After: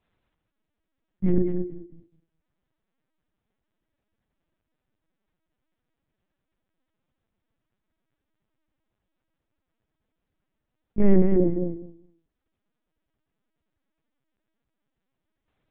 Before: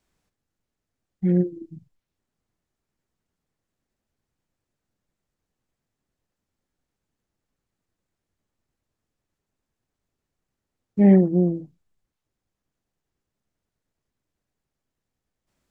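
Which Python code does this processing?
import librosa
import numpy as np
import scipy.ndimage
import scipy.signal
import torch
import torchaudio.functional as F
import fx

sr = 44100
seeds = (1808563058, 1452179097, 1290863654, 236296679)

y = fx.echo_feedback(x, sr, ms=205, feedback_pct=16, wet_db=-6.5)
y = fx.lpc_vocoder(y, sr, seeds[0], excitation='pitch_kept', order=8)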